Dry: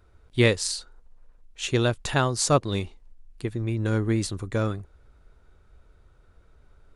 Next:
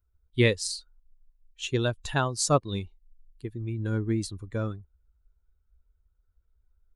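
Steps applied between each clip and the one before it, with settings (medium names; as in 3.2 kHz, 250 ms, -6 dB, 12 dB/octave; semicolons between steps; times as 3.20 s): expander on every frequency bin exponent 1.5; trim -1 dB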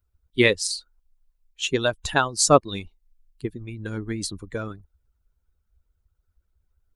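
harmonic-percussive split harmonic -13 dB; trim +8 dB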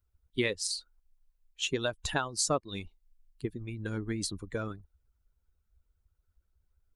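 compression 3:1, threshold -25 dBFS, peak gain reduction 12 dB; trim -3.5 dB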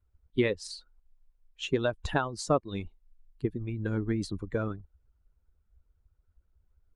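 low-pass 1.2 kHz 6 dB/octave; trim +5 dB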